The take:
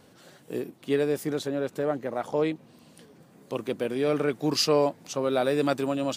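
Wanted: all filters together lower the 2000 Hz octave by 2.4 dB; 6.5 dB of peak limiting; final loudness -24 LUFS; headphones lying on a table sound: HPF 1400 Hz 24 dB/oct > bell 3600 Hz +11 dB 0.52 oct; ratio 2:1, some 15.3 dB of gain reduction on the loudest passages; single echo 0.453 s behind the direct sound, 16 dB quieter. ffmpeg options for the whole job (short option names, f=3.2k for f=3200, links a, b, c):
-af "equalizer=f=2k:t=o:g=-4,acompressor=threshold=-48dB:ratio=2,alimiter=level_in=9.5dB:limit=-24dB:level=0:latency=1,volume=-9.5dB,highpass=f=1.4k:w=0.5412,highpass=f=1.4k:w=1.3066,equalizer=f=3.6k:t=o:w=0.52:g=11,aecho=1:1:453:0.158,volume=26dB"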